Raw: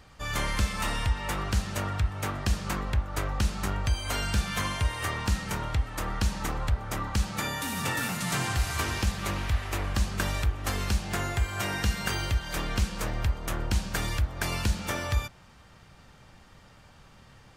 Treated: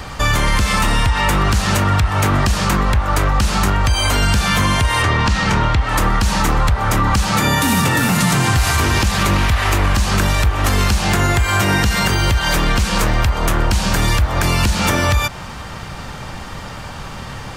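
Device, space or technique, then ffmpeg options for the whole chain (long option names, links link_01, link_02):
mastering chain: -filter_complex "[0:a]asettb=1/sr,asplit=3[link_01][link_02][link_03];[link_01]atrim=end=5.024[link_04];[link_02]atrim=start=5.02:end=5.89,asetpts=PTS-STARTPTS,afade=type=in:duration=0.004:curve=qsin,afade=type=out:start_time=0.866:duration=0.004:curve=qsin,lowpass=5500[link_05];[link_03]atrim=start=5.886[link_06];[link_04][link_05]acrossfade=duration=0.004:curve1=hsin:curve2=qsin[link_07];[link_07][link_06]acrossfade=duration=0.004:curve1=qsin:curve2=hsin,equalizer=frequency=980:width_type=o:width=0.77:gain=3,acrossover=split=440|990[link_08][link_09][link_10];[link_08]acompressor=threshold=-31dB:ratio=4[link_11];[link_09]acompressor=threshold=-47dB:ratio=4[link_12];[link_10]acompressor=threshold=-37dB:ratio=4[link_13];[link_11][link_12][link_13]amix=inputs=3:normalize=0,acompressor=threshold=-34dB:ratio=2,asoftclip=type=tanh:threshold=-24.5dB,alimiter=level_in=29.5dB:limit=-1dB:release=50:level=0:latency=1,volume=-6dB"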